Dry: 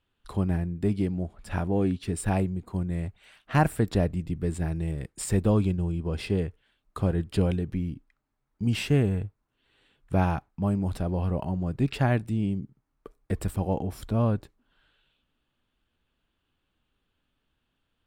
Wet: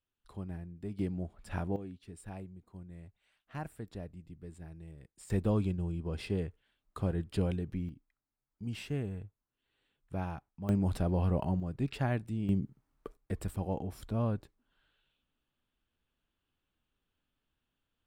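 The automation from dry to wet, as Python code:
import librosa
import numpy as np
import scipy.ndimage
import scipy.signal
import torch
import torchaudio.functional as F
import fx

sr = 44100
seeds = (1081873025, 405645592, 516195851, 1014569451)

y = fx.gain(x, sr, db=fx.steps((0.0, -15.0), (0.99, -7.0), (1.76, -19.0), (5.3, -7.0), (7.89, -13.0), (10.69, -2.0), (11.6, -8.0), (12.49, 0.5), (13.17, -7.5)))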